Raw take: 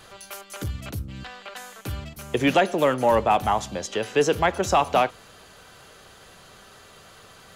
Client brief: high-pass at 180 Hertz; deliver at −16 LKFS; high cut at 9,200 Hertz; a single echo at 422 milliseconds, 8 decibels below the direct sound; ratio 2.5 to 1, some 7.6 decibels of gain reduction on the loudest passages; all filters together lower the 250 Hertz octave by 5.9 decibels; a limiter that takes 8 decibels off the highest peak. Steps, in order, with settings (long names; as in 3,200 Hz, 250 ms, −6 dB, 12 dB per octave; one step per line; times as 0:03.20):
high-pass filter 180 Hz
low-pass filter 9,200 Hz
parametric band 250 Hz −6.5 dB
downward compressor 2.5 to 1, threshold −27 dBFS
brickwall limiter −22.5 dBFS
single-tap delay 422 ms −8 dB
level +18.5 dB